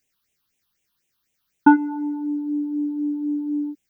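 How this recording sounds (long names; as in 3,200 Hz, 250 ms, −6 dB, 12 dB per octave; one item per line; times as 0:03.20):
phaser sweep stages 6, 4 Hz, lowest notch 530–1,300 Hz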